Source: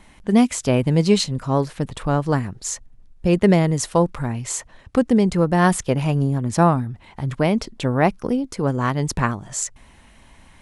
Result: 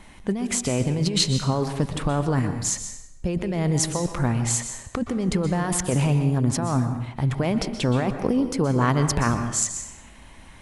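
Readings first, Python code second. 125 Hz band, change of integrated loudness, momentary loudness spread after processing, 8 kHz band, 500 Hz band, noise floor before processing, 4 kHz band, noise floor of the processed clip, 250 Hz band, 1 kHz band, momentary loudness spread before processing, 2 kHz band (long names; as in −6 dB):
−1.5 dB, −3.5 dB, 7 LU, +2.5 dB, −6.0 dB, −50 dBFS, +1.5 dB, −46 dBFS, −4.5 dB, −5.5 dB, 10 LU, −4.0 dB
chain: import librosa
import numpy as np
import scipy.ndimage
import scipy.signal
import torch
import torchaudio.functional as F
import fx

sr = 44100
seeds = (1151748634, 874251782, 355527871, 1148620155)

y = fx.over_compress(x, sr, threshold_db=-21.0, ratio=-1.0)
y = fx.rev_plate(y, sr, seeds[0], rt60_s=0.77, hf_ratio=0.85, predelay_ms=110, drr_db=8.0)
y = y * librosa.db_to_amplitude(-1.0)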